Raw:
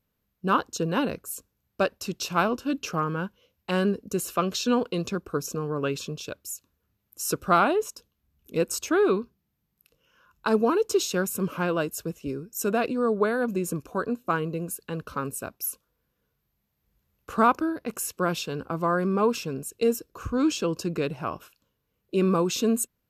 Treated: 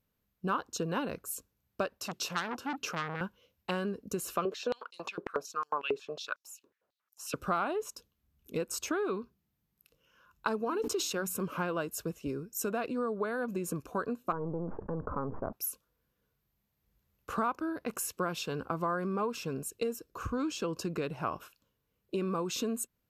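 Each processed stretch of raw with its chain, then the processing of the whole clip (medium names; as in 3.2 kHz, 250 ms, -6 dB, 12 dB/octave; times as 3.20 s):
2.00–3.21 s: high-pass 110 Hz + transformer saturation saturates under 3.8 kHz
4.45–7.34 s: tilt EQ -3.5 dB/octave + step-sequenced high-pass 11 Hz 420–5800 Hz
10.65–11.46 s: hum notches 60/120/180/240/300 Hz + decay stretcher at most 65 dB/s
14.32–15.53 s: partial rectifier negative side -7 dB + inverse Chebyshev low-pass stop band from 3.5 kHz, stop band 60 dB + level flattener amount 70%
whole clip: compression 6:1, threshold -28 dBFS; dynamic bell 1.1 kHz, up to +4 dB, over -47 dBFS, Q 0.82; trim -3 dB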